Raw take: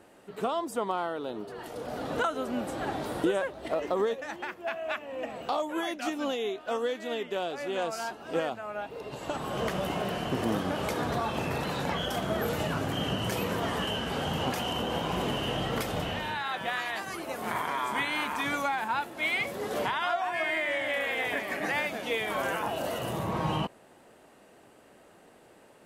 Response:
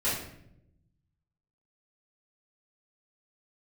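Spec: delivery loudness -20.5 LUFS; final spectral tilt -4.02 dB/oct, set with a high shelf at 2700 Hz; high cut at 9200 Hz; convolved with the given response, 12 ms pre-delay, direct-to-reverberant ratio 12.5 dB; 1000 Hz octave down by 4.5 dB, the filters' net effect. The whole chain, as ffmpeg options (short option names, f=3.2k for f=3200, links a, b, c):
-filter_complex "[0:a]lowpass=9.2k,equalizer=f=1k:t=o:g=-7,highshelf=f=2.7k:g=5.5,asplit=2[a][b];[1:a]atrim=start_sample=2205,adelay=12[c];[b][c]afir=irnorm=-1:irlink=0,volume=-22dB[d];[a][d]amix=inputs=2:normalize=0,volume=11dB"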